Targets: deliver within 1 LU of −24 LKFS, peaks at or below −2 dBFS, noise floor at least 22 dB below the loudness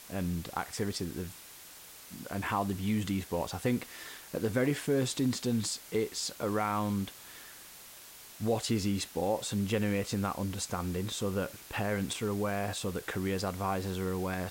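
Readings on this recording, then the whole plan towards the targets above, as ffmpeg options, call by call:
background noise floor −51 dBFS; target noise floor −55 dBFS; integrated loudness −33.0 LKFS; sample peak −17.0 dBFS; target loudness −24.0 LKFS
→ -af "afftdn=noise_reduction=6:noise_floor=-51"
-af "volume=9dB"

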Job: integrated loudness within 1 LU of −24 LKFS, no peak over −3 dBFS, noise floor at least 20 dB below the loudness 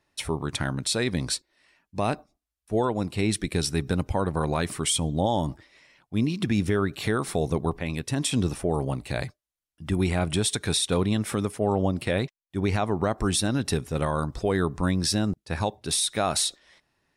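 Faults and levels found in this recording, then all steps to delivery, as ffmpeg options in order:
integrated loudness −26.5 LKFS; sample peak −14.0 dBFS; target loudness −24.0 LKFS
→ -af "volume=2.5dB"

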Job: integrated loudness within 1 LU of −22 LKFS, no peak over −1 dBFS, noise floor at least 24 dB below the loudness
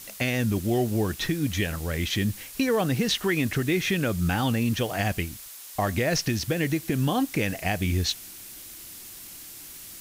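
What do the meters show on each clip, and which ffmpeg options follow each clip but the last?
background noise floor −43 dBFS; target noise floor −50 dBFS; integrated loudness −26.0 LKFS; sample peak −10.0 dBFS; target loudness −22.0 LKFS
→ -af "afftdn=noise_reduction=7:noise_floor=-43"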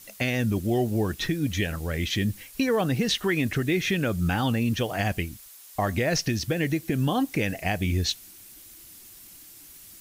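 background noise floor −48 dBFS; target noise floor −51 dBFS
→ -af "afftdn=noise_reduction=6:noise_floor=-48"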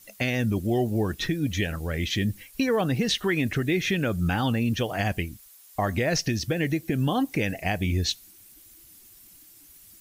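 background noise floor −52 dBFS; integrated loudness −26.5 LKFS; sample peak −10.5 dBFS; target loudness −22.0 LKFS
→ -af "volume=4.5dB"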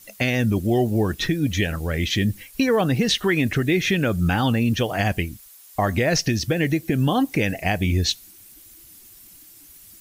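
integrated loudness −22.0 LKFS; sample peak −6.0 dBFS; background noise floor −48 dBFS

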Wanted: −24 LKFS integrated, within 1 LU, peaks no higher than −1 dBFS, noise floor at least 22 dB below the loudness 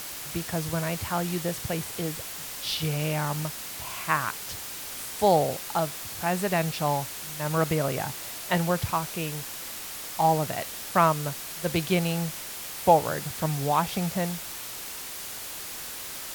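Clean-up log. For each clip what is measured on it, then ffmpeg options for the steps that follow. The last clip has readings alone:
background noise floor −38 dBFS; target noise floor −50 dBFS; integrated loudness −28.0 LKFS; sample peak −7.0 dBFS; target loudness −24.0 LKFS
→ -af "afftdn=noise_reduction=12:noise_floor=-38"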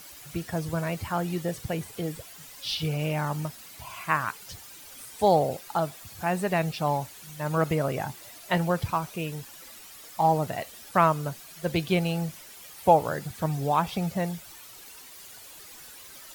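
background noise floor −47 dBFS; target noise floor −50 dBFS
→ -af "afftdn=noise_reduction=6:noise_floor=-47"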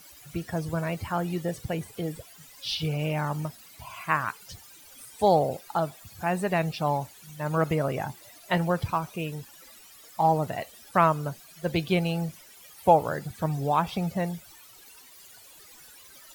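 background noise floor −51 dBFS; integrated loudness −28.0 LKFS; sample peak −7.0 dBFS; target loudness −24.0 LKFS
→ -af "volume=4dB"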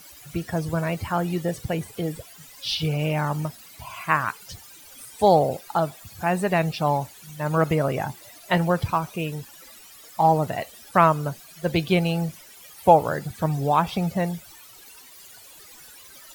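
integrated loudness −24.0 LKFS; sample peak −3.0 dBFS; background noise floor −47 dBFS

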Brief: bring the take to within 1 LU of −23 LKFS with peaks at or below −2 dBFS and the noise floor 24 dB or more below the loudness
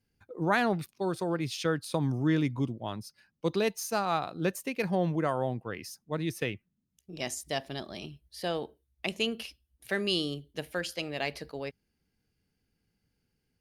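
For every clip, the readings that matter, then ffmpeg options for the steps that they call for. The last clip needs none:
integrated loudness −32.0 LKFS; sample peak −13.0 dBFS; target loudness −23.0 LKFS
→ -af "volume=9dB"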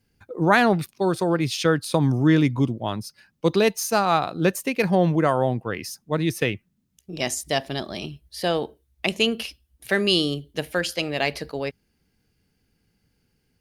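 integrated loudness −23.0 LKFS; sample peak −4.0 dBFS; background noise floor −71 dBFS

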